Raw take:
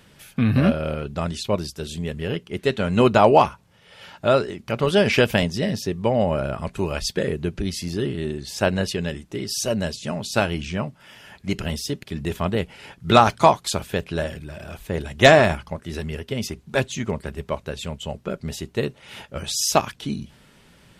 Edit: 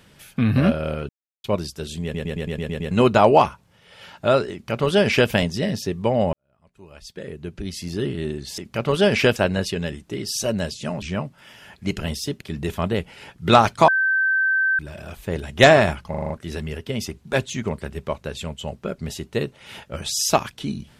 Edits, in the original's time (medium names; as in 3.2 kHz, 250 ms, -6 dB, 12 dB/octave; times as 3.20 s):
1.09–1.44 s: mute
2.03 s: stutter in place 0.11 s, 8 plays
4.52–5.30 s: copy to 8.58 s
6.33–8.05 s: fade in quadratic
10.24–10.64 s: delete
13.50–14.41 s: bleep 1.55 kHz -16.5 dBFS
15.72 s: stutter 0.04 s, 6 plays